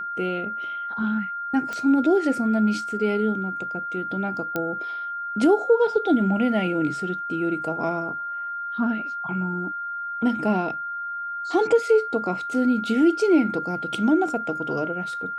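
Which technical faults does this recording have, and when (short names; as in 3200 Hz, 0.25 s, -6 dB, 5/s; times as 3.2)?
tone 1400 Hz -28 dBFS
1.73 pop -17 dBFS
4.56 pop -12 dBFS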